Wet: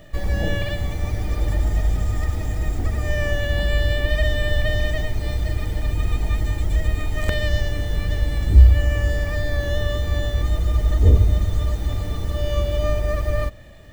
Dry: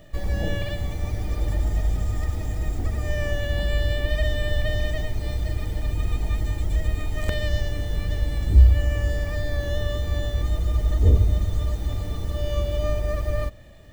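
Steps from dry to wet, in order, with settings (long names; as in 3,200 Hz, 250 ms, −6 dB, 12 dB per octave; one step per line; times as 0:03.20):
parametric band 1,700 Hz +2.5 dB 1.4 octaves
level +3 dB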